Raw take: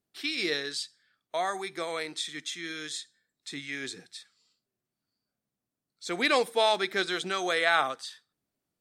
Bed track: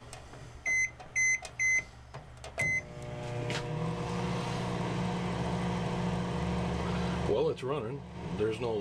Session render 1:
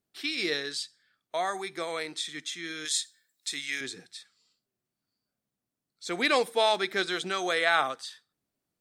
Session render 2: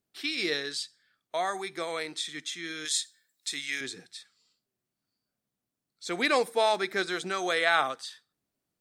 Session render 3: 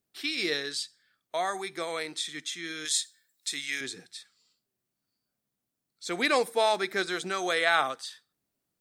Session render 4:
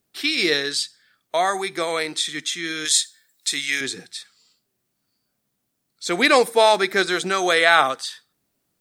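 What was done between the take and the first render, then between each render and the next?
2.85–3.81 tilt +3.5 dB/oct
6.25–7.43 bell 3200 Hz -6 dB 0.53 oct
high shelf 9900 Hz +5 dB
gain +9.5 dB; limiter -1 dBFS, peak gain reduction 1 dB

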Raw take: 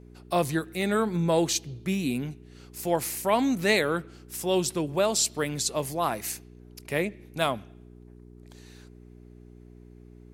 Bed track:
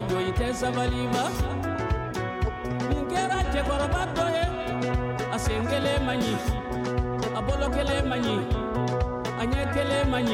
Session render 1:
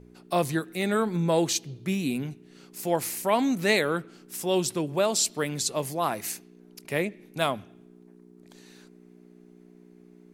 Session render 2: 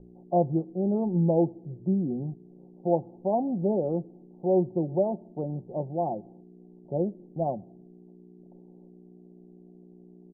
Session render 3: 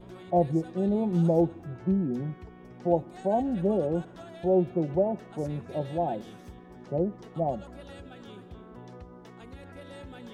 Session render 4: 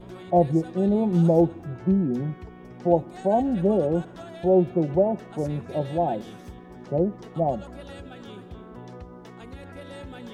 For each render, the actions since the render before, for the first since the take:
de-hum 60 Hz, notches 2
Chebyshev low-pass 830 Hz, order 6; comb 5.6 ms, depth 47%
add bed track -21 dB
gain +4.5 dB

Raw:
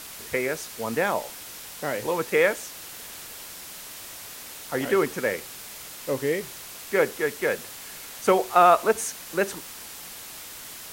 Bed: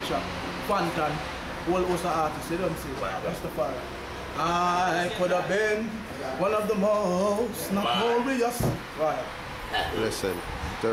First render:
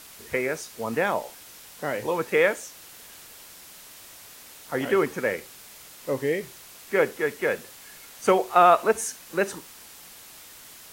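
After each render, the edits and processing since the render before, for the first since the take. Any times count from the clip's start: noise print and reduce 6 dB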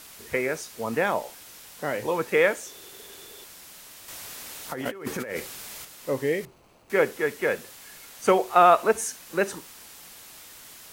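2.66–3.44 small resonant body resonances 400/3500 Hz, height 15 dB, ringing for 40 ms; 4.08–5.85 negative-ratio compressor -33 dBFS; 6.45–6.9 median filter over 25 samples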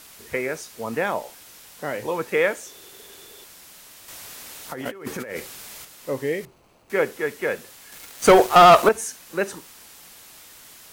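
7.92–8.89 sample leveller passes 3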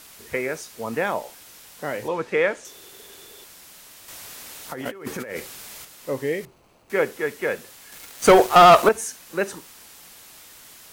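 2.08–2.65 air absorption 73 m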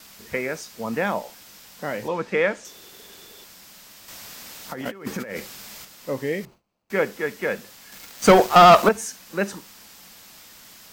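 gate with hold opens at -38 dBFS; thirty-one-band EQ 200 Hz +8 dB, 400 Hz -3 dB, 5000 Hz +3 dB, 10000 Hz -7 dB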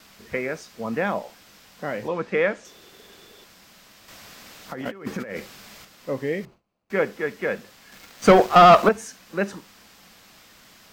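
high shelf 5400 Hz -11 dB; notch 900 Hz, Q 18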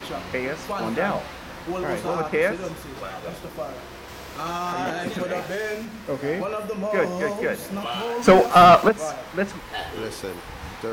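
add bed -3.5 dB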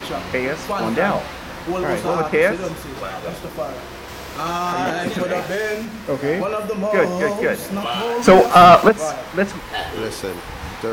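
gain +5.5 dB; limiter -1 dBFS, peak gain reduction 2.5 dB

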